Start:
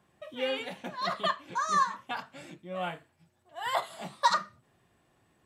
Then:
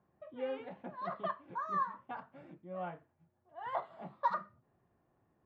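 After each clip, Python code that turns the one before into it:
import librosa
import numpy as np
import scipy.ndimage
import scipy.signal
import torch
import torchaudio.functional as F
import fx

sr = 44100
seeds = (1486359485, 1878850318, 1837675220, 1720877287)

y = scipy.signal.sosfilt(scipy.signal.butter(2, 1200.0, 'lowpass', fs=sr, output='sos'), x)
y = y * 10.0 ** (-5.5 / 20.0)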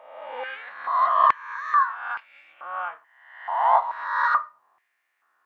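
y = fx.spec_swells(x, sr, rise_s=1.0)
y = fx.filter_held_highpass(y, sr, hz=2.3, low_hz=890.0, high_hz=2400.0)
y = y * 10.0 ** (7.5 / 20.0)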